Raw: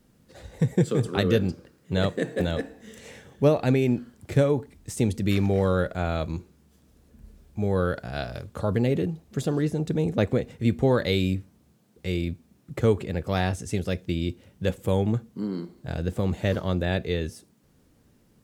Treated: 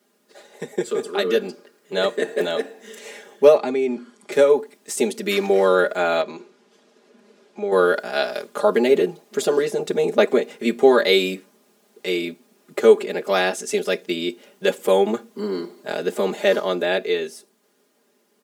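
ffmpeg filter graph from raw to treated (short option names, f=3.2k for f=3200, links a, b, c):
-filter_complex "[0:a]asettb=1/sr,asplit=3[a][b][c];[a]atrim=end=3.564[d];[b]atrim=start=3.56:end=4.32,asetpts=PTS-STARTPTS,afade=t=in:d=0.004:c=qsin,afade=t=out:st=0.756:d=0.004:c=qsin,lowpass=f=9.5k:w=0.5412,lowpass=f=9.5k:w=1.3066,acrossover=split=1100|2600[e][f][g];[e]acompressor=threshold=-22dB:ratio=4[h];[f]acompressor=threshold=-49dB:ratio=4[i];[g]acompressor=threshold=-51dB:ratio=4[j];[h][i][j]amix=inputs=3:normalize=0,aecho=1:1:0.9:0.32,atrim=end_sample=33516[k];[c]atrim=start=4.316[l];[d][k]acrossfade=d=0.004:c1=hsin:c2=qsin[m];[m][l]acrossfade=d=0.004:c1=qsin:c2=hsin,asettb=1/sr,asplit=3[n][o][p];[n]atrim=end=6.214[q];[o]atrim=start=6.21:end=7.72,asetpts=PTS-STARTPTS,afade=t=in:d=0.004:c=qsin,afade=t=out:st=1.506:d=0.004:c=qsin,highpass=140,lowpass=5.2k,acompressor=threshold=-32dB:ratio=2.5:attack=3.2:release=140:knee=1:detection=peak[r];[p]atrim=start=7.716[s];[q][r]acrossfade=d=0.004:c1=hsin:c2=qsin[t];[t][s]acrossfade=d=0.004:c1=qsin:c2=hsin,highpass=f=310:w=0.5412,highpass=f=310:w=1.3066,aecho=1:1:4.9:0.98,dynaudnorm=f=210:g=17:m=9dB"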